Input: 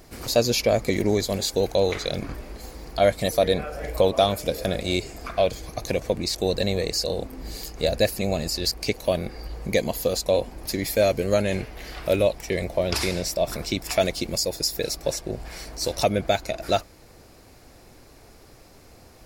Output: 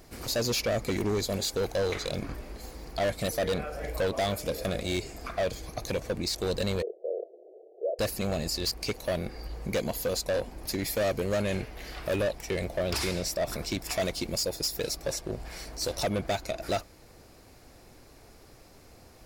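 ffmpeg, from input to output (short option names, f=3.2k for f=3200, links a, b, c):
-filter_complex "[0:a]volume=20.5dB,asoftclip=hard,volume=-20.5dB,asettb=1/sr,asplit=3[a][b][c];[a]atrim=end=6.824[d];[b]atrim=start=6.82:end=7.99,asetpts=PTS-STARTPTS,afade=t=in:d=0.004:c=qsin,afade=t=out:st=1.166:d=0.004:c=qsin,asuperpass=centerf=500:order=12:qfactor=1.5[e];[c]atrim=start=7.986[f];[d][e]acrossfade=d=0.004:c1=hsin:c2=qsin[g];[g][f]acrossfade=d=0.004:c1=qsin:c2=hsin,volume=-3.5dB"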